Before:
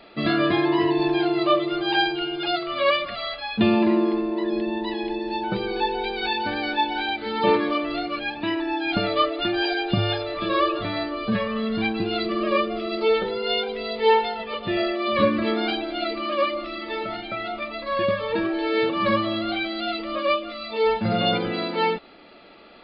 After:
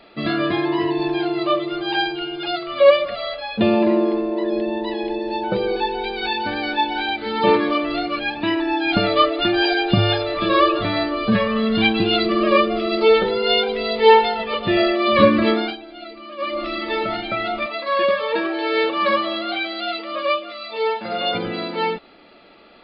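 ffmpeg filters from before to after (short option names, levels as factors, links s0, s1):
-filter_complex "[0:a]asettb=1/sr,asplit=3[s0][s1][s2];[s0]atrim=end=2.804[s3];[s1]atrim=start=2.8:end=5.76,asetpts=PTS-STARTPTS,afade=t=in:d=0.004:c=qsin,afade=t=out:st=2.956:d=0.004:c=qsin,equalizer=f=540:t=o:w=0.48:g=12[s4];[s2]atrim=start=5.756[s5];[s3][s4]acrossfade=d=0.004:c1=hsin:c2=qsin[s6];[s6][s5]acrossfade=d=0.004:c1=qsin:c2=hsin,asettb=1/sr,asplit=3[s7][s8][s9];[s7]atrim=end=11.754[s10];[s8]atrim=start=11.75:end=12.16,asetpts=PTS-STARTPTS,afade=t=in:d=0.004:c=qsin,afade=t=out:st=0.406:d=0.004:c=qsin,equalizer=f=3200:w=2.5:g=8[s11];[s9]atrim=start=12.156[s12];[s10][s11]acrossfade=d=0.004:c1=hsin:c2=qsin[s13];[s13][s12]acrossfade=d=0.004:c1=qsin:c2=hsin,asettb=1/sr,asplit=3[s14][s15][s16];[s14]atrim=end=17.664[s17];[s15]atrim=start=17.66:end=21.35,asetpts=PTS-STARTPTS,afade=t=in:d=0.004:c=qsin,afade=t=out:st=3.686:d=0.004:c=qsin,highpass=410[s18];[s16]atrim=start=21.346[s19];[s17][s18]acrossfade=d=0.004:c1=hsin:c2=qsin[s20];[s20][s19]acrossfade=d=0.004:c1=qsin:c2=hsin,asplit=3[s21][s22][s23];[s21]atrim=end=15.77,asetpts=PTS-STARTPTS,afade=t=out:st=15.49:d=0.28:silence=0.158489[s24];[s22]atrim=start=15.77:end=16.38,asetpts=PTS-STARTPTS,volume=0.158[s25];[s23]atrim=start=16.38,asetpts=PTS-STARTPTS,afade=t=in:d=0.28:silence=0.158489[s26];[s24][s25][s26]concat=n=3:v=0:a=1,dynaudnorm=f=400:g=21:m=3.76"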